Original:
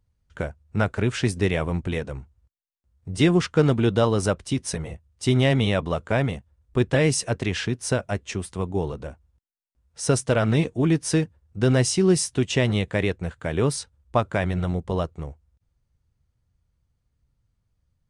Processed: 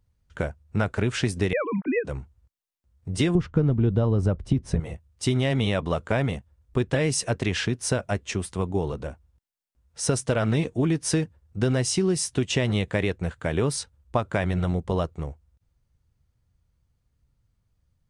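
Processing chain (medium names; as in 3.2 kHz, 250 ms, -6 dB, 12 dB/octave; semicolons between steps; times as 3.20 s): 1.53–2.05 s: formants replaced by sine waves; 3.35–4.80 s: tilt EQ -4 dB/octave; compression 5:1, threshold -21 dBFS, peak gain reduction 14.5 dB; trim +1.5 dB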